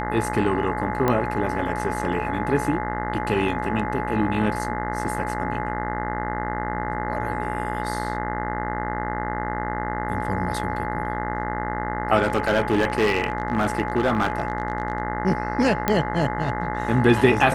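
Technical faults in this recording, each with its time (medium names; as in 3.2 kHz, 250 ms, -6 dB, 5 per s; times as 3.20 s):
buzz 60 Hz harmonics 35 -29 dBFS
whine 850 Hz -29 dBFS
1.08 s: pop -9 dBFS
12.22–15.00 s: clipped -14.5 dBFS
15.88 s: pop -6 dBFS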